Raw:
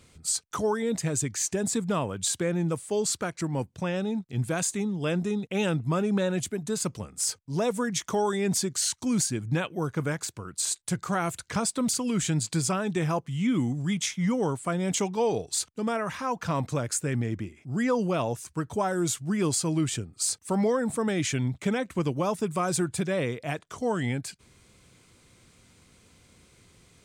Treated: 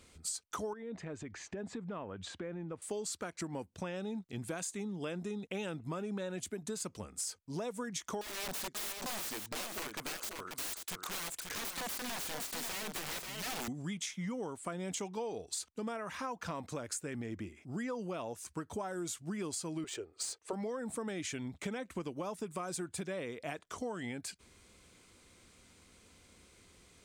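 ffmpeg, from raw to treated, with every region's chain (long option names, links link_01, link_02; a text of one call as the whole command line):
ffmpeg -i in.wav -filter_complex "[0:a]asettb=1/sr,asplit=3[link_01][link_02][link_03];[link_01]atrim=end=0.734[link_04];[link_02]atrim=start=0.73:end=2.82,asetpts=PTS-STARTPTS,afade=type=in:duration=0.004:curve=qsin,afade=type=out:start_time=2.086:duration=0.004:curve=qsin,lowpass=2200,acompressor=threshold=-34dB:ratio=4:attack=3.2:release=140:knee=1:detection=peak[link_05];[link_03]atrim=start=2.816[link_06];[link_04][link_05]acrossfade=duration=0.004:curve1=hsin:curve2=qsin[link_07];[link_07][link_06]acrossfade=duration=0.004:curve1=qsin:curve2=hsin,asettb=1/sr,asplit=3[link_08][link_09][link_10];[link_08]atrim=end=8.214[link_11];[link_09]atrim=start=8.21:end=13.68,asetpts=PTS-STARTPTS,afade=type=in:duration=0.004:curve=qsin,afade=type=out:start_time=5.466:duration=0.004:curve=qsin,highpass=frequency=500:poles=1,aeval=exprs='(mod(29.9*val(0)+1,2)-1)/29.9':channel_layout=same,aecho=1:1:536:0.473,atrim=end_sample=241227[link_12];[link_10]atrim=start=13.676[link_13];[link_11][link_12]acrossfade=duration=0.004:curve1=hsin:curve2=qsin[link_14];[link_14][link_13]acrossfade=duration=0.004:curve1=qsin:curve2=hsin,asettb=1/sr,asplit=3[link_15][link_16][link_17];[link_15]atrim=end=19.844[link_18];[link_16]atrim=start=19.84:end=20.53,asetpts=PTS-STARTPTS,afade=type=in:duration=0.004:curve=qsin,afade=type=out:start_time=0.686:duration=0.004:curve=qsin,lowshelf=frequency=290:width_type=q:width=3:gain=-11.5,adynamicsmooth=sensitivity=5:basefreq=5200,bandreject=frequency=5300:width=26[link_19];[link_17]atrim=start=20.526[link_20];[link_18][link_19]acrossfade=duration=0.004:curve1=hsin:curve2=qsin[link_21];[link_21][link_20]acrossfade=duration=0.004:curve1=qsin:curve2=hsin,equalizer=frequency=130:width_type=o:width=0.68:gain=-10.5,acompressor=threshold=-34dB:ratio=6,volume=-2.5dB" out.wav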